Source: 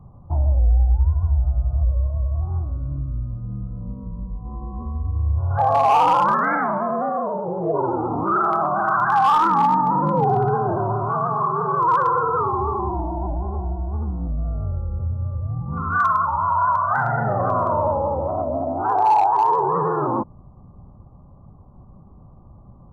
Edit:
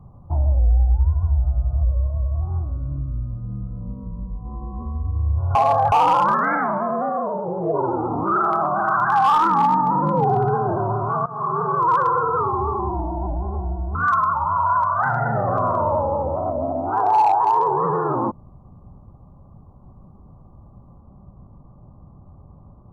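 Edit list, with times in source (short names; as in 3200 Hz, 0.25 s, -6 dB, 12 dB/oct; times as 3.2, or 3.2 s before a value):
5.55–5.92 reverse
11.26–11.53 fade in, from -18.5 dB
13.95–15.87 cut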